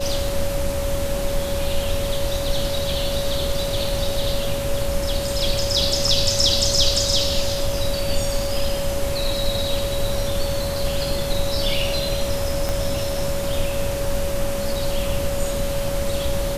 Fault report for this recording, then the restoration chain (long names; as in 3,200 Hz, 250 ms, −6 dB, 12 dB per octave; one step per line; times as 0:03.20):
whistle 560 Hz −25 dBFS
0:12.69: click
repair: click removal
notch filter 560 Hz, Q 30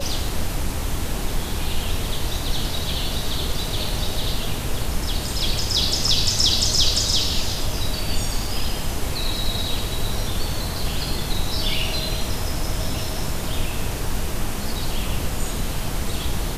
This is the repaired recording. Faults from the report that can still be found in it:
0:12.69: click